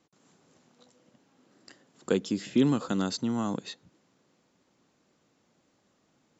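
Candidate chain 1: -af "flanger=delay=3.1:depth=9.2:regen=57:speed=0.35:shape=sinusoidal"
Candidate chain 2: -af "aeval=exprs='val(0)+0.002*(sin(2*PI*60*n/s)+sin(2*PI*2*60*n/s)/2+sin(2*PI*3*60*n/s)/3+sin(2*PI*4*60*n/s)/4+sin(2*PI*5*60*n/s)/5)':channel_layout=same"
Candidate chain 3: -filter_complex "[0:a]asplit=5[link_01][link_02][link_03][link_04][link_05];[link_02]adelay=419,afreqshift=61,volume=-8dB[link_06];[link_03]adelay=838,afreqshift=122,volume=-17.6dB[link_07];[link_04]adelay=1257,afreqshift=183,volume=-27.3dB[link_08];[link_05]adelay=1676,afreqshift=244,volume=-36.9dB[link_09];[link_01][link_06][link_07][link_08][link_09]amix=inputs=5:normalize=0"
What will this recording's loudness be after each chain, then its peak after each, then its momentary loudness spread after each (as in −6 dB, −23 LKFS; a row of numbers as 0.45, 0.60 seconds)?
−31.5, −29.0, −29.0 LKFS; −14.5, −12.0, −12.0 dBFS; 16, 19, 19 LU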